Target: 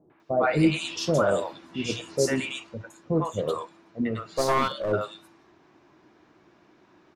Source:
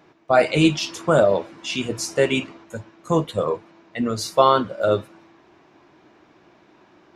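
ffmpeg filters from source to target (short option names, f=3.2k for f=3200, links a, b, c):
-filter_complex "[0:a]acrossover=split=670|2800[a][b][c];[b]adelay=100[d];[c]adelay=200[e];[a][d][e]amix=inputs=3:normalize=0,asplit=3[f][g][h];[f]afade=t=out:st=4.21:d=0.02[i];[g]aeval=exprs='clip(val(0),-1,0.075)':c=same,afade=t=in:st=4.21:d=0.02,afade=t=out:st=4.91:d=0.02[j];[h]afade=t=in:st=4.91:d=0.02[k];[i][j][k]amix=inputs=3:normalize=0,volume=-3.5dB"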